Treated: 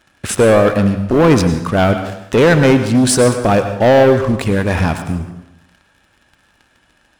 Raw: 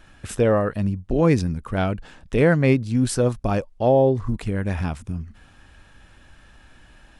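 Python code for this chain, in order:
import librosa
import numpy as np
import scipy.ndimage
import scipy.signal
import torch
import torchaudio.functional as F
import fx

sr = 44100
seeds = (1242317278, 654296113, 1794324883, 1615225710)

y = fx.highpass(x, sr, hz=200.0, slope=6)
y = fx.leveller(y, sr, passes=3)
y = fx.rev_plate(y, sr, seeds[0], rt60_s=0.82, hf_ratio=0.8, predelay_ms=85, drr_db=8.0)
y = y * librosa.db_to_amplitude(3.0)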